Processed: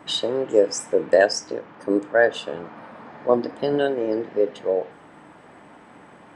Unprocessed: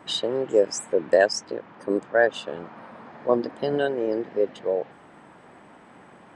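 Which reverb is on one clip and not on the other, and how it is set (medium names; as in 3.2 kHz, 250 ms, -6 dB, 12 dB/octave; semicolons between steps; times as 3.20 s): FDN reverb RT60 0.34 s, low-frequency decay 0.9×, high-frequency decay 1×, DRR 12 dB; trim +2 dB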